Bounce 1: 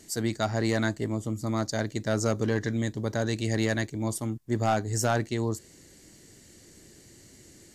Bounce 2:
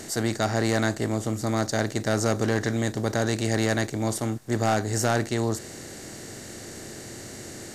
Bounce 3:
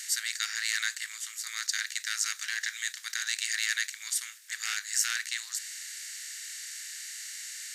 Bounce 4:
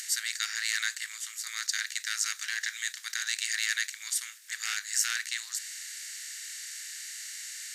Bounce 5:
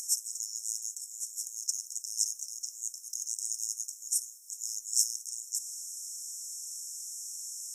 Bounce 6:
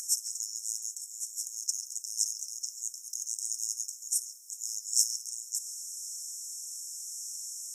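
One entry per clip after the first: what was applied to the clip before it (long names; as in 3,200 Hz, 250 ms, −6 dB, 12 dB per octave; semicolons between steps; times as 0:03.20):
compressor on every frequency bin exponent 0.6
Butterworth high-pass 1,700 Hz 36 dB per octave; level +3 dB
upward compression, threshold −41 dBFS
brick-wall band-stop 560–5,200 Hz; level +1.5 dB
auto-filter high-pass sine 0.86 Hz 680–2,800 Hz; echo through a band-pass that steps 138 ms, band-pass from 3,400 Hz, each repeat −0.7 octaves, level −3 dB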